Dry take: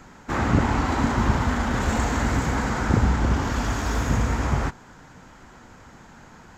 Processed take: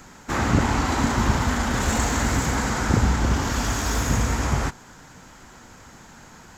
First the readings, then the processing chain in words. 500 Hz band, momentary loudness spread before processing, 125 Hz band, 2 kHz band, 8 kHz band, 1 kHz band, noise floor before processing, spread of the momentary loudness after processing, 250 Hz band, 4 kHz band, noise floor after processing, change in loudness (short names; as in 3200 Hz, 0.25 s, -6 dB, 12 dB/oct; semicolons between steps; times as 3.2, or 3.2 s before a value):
0.0 dB, 4 LU, 0.0 dB, +1.5 dB, +8.0 dB, +0.5 dB, -48 dBFS, 4 LU, 0.0 dB, +5.0 dB, -47 dBFS, +1.0 dB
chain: high shelf 4200 Hz +11 dB